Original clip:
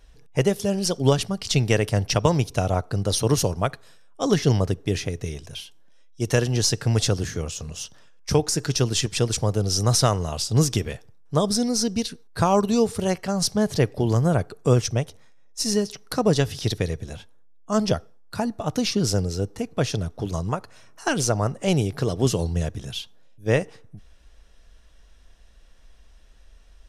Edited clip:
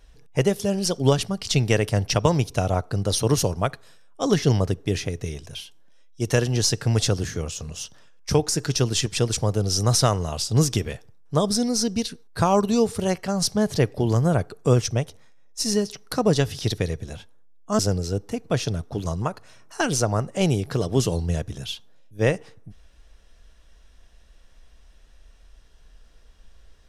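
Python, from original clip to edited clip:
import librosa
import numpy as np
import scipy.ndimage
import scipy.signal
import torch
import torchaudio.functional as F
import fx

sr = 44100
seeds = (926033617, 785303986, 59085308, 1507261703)

y = fx.edit(x, sr, fx.cut(start_s=17.79, length_s=1.27), tone=tone)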